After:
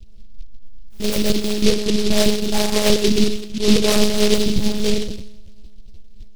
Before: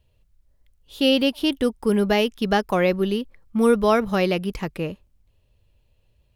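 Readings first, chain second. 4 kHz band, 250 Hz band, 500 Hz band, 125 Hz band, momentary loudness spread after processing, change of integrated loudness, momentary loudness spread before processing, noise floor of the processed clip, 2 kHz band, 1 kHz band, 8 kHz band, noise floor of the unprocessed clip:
+6.5 dB, +3.0 dB, +1.5 dB, +4.0 dB, 7 LU, +3.0 dB, 11 LU, -35 dBFS, 0.0 dB, -5.0 dB, +18.0 dB, -64 dBFS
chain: tilt EQ -3.5 dB/octave; reverse; compression 6:1, threshold -25 dBFS, peak gain reduction 16 dB; reverse; two-slope reverb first 0.74 s, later 2.7 s, from -27 dB, DRR -9 dB; monotone LPC vocoder at 8 kHz 210 Hz; delay time shaken by noise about 3.8 kHz, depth 0.18 ms; trim +3 dB

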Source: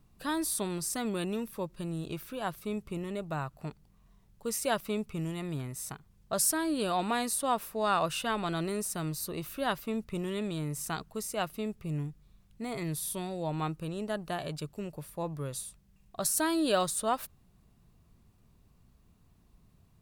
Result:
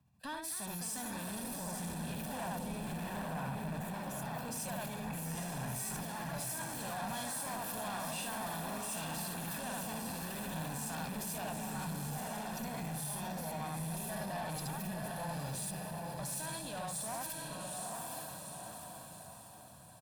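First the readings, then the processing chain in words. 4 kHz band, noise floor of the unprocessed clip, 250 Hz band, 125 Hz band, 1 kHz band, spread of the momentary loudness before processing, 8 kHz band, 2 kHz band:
-5.5 dB, -64 dBFS, -7.0 dB, -3.5 dB, -5.5 dB, 11 LU, -4.5 dB, -4.0 dB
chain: hum notches 50/100/150 Hz; delay 74 ms -4 dB; level held to a coarse grid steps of 23 dB; on a send: echo that smears into a reverb 871 ms, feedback 52%, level -3 dB; on the sum: ever faster or slower copies 306 ms, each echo +3 st, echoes 3, each echo -6 dB; high-pass 81 Hz 24 dB/octave; valve stage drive 43 dB, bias 0.35; comb 1.2 ms, depth 55%; peak limiter -41.5 dBFS, peak gain reduction 4.5 dB; peaking EQ 340 Hz -8.5 dB 0.37 oct; three bands expanded up and down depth 40%; trim +10 dB

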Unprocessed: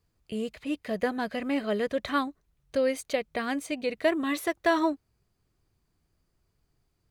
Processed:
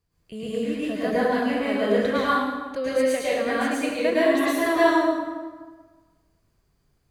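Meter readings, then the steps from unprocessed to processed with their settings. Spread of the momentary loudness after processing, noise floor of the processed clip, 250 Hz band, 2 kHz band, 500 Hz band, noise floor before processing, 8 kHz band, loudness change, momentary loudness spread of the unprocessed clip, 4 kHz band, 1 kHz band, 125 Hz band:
11 LU, -68 dBFS, +6.0 dB, +6.5 dB, +7.0 dB, -75 dBFS, +5.5 dB, +6.5 dB, 9 LU, +5.0 dB, +7.0 dB, no reading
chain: plate-style reverb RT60 1.4 s, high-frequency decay 0.7×, pre-delay 95 ms, DRR -9.5 dB; trim -3.5 dB

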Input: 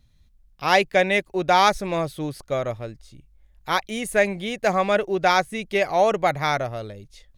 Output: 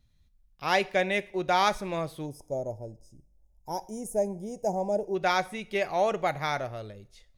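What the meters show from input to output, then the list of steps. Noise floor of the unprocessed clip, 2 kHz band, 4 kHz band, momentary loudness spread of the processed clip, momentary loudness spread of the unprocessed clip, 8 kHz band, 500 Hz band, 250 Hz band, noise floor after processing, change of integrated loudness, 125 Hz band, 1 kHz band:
-58 dBFS, -8.0 dB, -7.5 dB, 12 LU, 13 LU, -7.0 dB, -6.5 dB, -6.5 dB, -64 dBFS, -7.0 dB, -7.0 dB, -7.5 dB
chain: time-frequency box 2.26–5.15 s, 1–4.9 kHz -27 dB; two-slope reverb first 0.49 s, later 1.6 s, from -27 dB, DRR 14.5 dB; trim -7 dB

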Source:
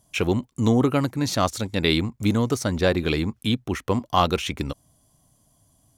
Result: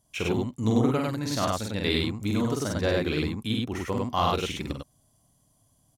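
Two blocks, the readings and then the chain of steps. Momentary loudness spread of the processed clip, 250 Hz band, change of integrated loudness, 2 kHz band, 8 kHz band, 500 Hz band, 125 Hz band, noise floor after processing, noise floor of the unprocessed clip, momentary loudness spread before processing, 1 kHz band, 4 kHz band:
6 LU, -4.0 dB, -4.0 dB, -4.0 dB, -4.0 dB, -3.5 dB, -4.0 dB, -67 dBFS, -64 dBFS, 6 LU, -4.0 dB, -4.0 dB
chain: loudspeakers at several distances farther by 16 m -3 dB, 34 m -1 dB; trim -7.5 dB

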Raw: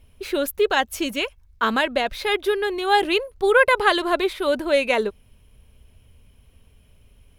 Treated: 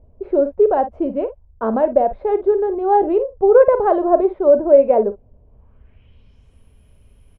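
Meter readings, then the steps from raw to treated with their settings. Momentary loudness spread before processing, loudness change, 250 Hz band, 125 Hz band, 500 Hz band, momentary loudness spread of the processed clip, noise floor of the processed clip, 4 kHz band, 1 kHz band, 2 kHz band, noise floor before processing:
8 LU, +5.0 dB, +5.5 dB, no reading, +8.0 dB, 10 LU, -52 dBFS, under -30 dB, +3.0 dB, -16.0 dB, -55 dBFS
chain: treble shelf 2 kHz -10.5 dB; low-pass sweep 650 Hz -> 11 kHz, 5.44–6.63 s; on a send: early reflections 40 ms -15 dB, 54 ms -13.5 dB; on the sum: trim +3 dB

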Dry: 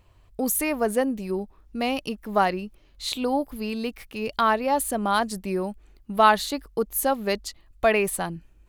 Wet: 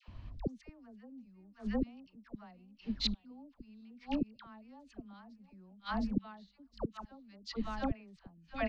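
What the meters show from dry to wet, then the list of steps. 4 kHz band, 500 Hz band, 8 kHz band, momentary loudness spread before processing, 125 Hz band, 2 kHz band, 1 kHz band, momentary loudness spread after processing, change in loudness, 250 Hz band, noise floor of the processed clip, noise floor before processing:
-10.5 dB, -20.5 dB, -29.5 dB, 12 LU, no reading, -20.0 dB, -22.5 dB, 20 LU, -14.5 dB, -10.0 dB, -69 dBFS, -57 dBFS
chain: steep low-pass 5.4 kHz 36 dB/octave; resonant low shelf 310 Hz +6.5 dB, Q 3; feedback delay 712 ms, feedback 25%, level -17.5 dB; inverted gate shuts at -21 dBFS, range -38 dB; phase dispersion lows, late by 83 ms, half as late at 870 Hz; trim +3 dB

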